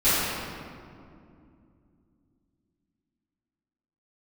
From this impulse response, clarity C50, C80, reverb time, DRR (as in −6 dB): −4.5 dB, −1.5 dB, 2.5 s, −17.5 dB